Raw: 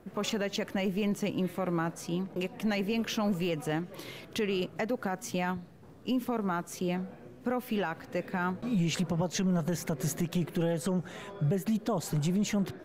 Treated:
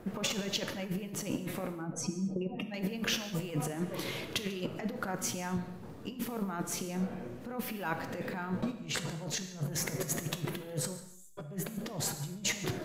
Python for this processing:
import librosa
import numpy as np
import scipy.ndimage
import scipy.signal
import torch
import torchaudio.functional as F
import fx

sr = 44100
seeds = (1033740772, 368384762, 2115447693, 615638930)

p1 = fx.spec_expand(x, sr, power=2.1, at=(1.75, 2.74))
p2 = fx.over_compress(p1, sr, threshold_db=-35.0, ratio=-0.5)
p3 = fx.cheby2_bandstop(p2, sr, low_hz=110.0, high_hz=2500.0, order=4, stop_db=60, at=(10.96, 11.37), fade=0.02)
p4 = p3 + fx.echo_single(p3, sr, ms=142, db=-19.5, dry=0)
y = fx.rev_gated(p4, sr, seeds[0], gate_ms=300, shape='falling', drr_db=7.5)